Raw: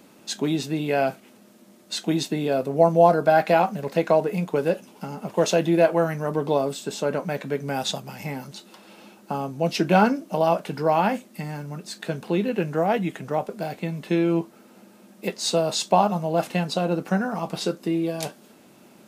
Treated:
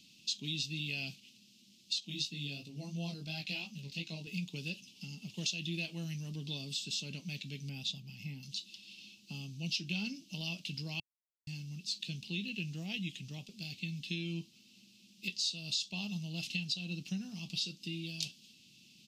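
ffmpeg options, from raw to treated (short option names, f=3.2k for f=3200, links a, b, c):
-filter_complex "[0:a]asettb=1/sr,asplit=3[a][b][c];[a]atrim=end=2.004[d];[b]atrim=start=2:end=4.27,asetpts=PTS-STARTPTS,afade=t=in:d=0.004:c=qsin,afade=t=out:st=2.266:d=0.004:c=qsin,flanger=delay=17.5:depth=4.1:speed=2.9[e];[c]atrim=start=4.266[f];[d][e]acrossfade=d=0.004:c1=hsin:c2=qsin[g];[g][f]acrossfade=d=0.004:c1=qsin:c2=hsin,asettb=1/sr,asplit=3[h][i][j];[h]atrim=end=7.694[k];[i]atrim=start=7.69:end=8.43,asetpts=PTS-STARTPTS,afade=t=in:d=0.004:c=qsin,afade=t=out:st=0.736:d=0.004:c=qsin,equalizer=f=6.8k:w=0.4:g=-11.5[l];[j]atrim=start=8.426[m];[k][l]acrossfade=d=0.004:c1=hsin:c2=qsin[n];[n][m]acrossfade=d=0.004:c1=qsin:c2=hsin,asplit=3[o][p][q];[o]atrim=end=11,asetpts=PTS-STARTPTS,afade=t=out:st=10.996:d=0.004:c=hsin[r];[p]atrim=start=11:end=11.47,asetpts=PTS-STARTPTS,volume=0[s];[q]atrim=start=11.47,asetpts=PTS-STARTPTS,afade=t=in:d=0.004:c=hsin[t];[r][s][t]concat=n=3:v=0:a=1,firequalizer=gain_entry='entry(130,0);entry(500,-27);entry(1500,-28);entry(2700,9);entry(4900,11);entry(9500,-6)':delay=0.05:min_phase=1,acompressor=threshold=-25dB:ratio=6,volume=-7.5dB"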